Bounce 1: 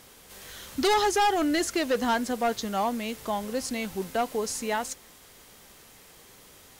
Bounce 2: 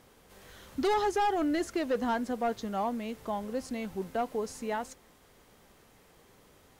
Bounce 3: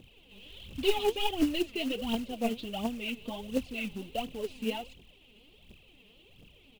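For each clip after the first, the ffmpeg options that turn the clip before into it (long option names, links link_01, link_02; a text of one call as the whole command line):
ffmpeg -i in.wav -af "highshelf=frequency=2100:gain=-11,volume=-3dB" out.wav
ffmpeg -i in.wav -af "firequalizer=gain_entry='entry(160,0);entry(1600,-25);entry(2700,12);entry(5700,-22)':delay=0.05:min_phase=1,aphaser=in_gain=1:out_gain=1:delay=5:decay=0.73:speed=1.4:type=triangular,acrusher=bits=4:mode=log:mix=0:aa=0.000001" out.wav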